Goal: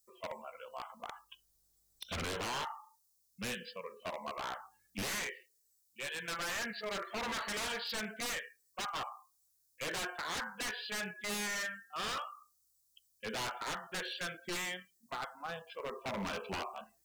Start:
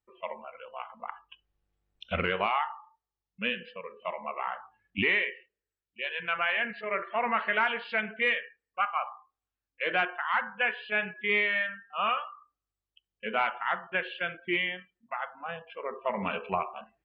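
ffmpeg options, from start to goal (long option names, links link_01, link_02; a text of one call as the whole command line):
ffmpeg -i in.wav -af "aexciter=amount=8.6:drive=8.5:freq=4200,aeval=exprs='0.0355*(abs(mod(val(0)/0.0355+3,4)-2)-1)':channel_layout=same,volume=-3.5dB" out.wav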